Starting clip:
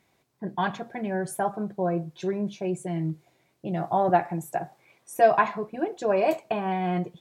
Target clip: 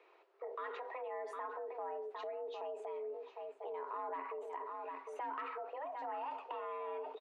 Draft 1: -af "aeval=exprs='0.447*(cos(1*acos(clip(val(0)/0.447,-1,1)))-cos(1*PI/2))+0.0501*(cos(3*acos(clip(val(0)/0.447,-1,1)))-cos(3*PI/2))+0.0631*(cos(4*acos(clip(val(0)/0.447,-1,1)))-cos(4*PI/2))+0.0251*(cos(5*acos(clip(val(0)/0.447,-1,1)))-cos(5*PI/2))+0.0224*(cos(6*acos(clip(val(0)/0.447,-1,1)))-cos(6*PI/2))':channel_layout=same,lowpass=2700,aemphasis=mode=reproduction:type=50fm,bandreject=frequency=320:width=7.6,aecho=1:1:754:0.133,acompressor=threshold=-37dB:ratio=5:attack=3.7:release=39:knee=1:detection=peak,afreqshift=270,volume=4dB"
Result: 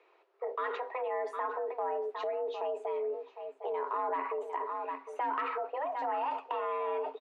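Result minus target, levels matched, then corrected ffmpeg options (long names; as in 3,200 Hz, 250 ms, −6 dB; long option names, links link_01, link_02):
downward compressor: peak gain reduction −9 dB
-af "aeval=exprs='0.447*(cos(1*acos(clip(val(0)/0.447,-1,1)))-cos(1*PI/2))+0.0501*(cos(3*acos(clip(val(0)/0.447,-1,1)))-cos(3*PI/2))+0.0631*(cos(4*acos(clip(val(0)/0.447,-1,1)))-cos(4*PI/2))+0.0251*(cos(5*acos(clip(val(0)/0.447,-1,1)))-cos(5*PI/2))+0.0224*(cos(6*acos(clip(val(0)/0.447,-1,1)))-cos(6*PI/2))':channel_layout=same,lowpass=2700,aemphasis=mode=reproduction:type=50fm,bandreject=frequency=320:width=7.6,aecho=1:1:754:0.133,acompressor=threshold=-48dB:ratio=5:attack=3.7:release=39:knee=1:detection=peak,afreqshift=270,volume=4dB"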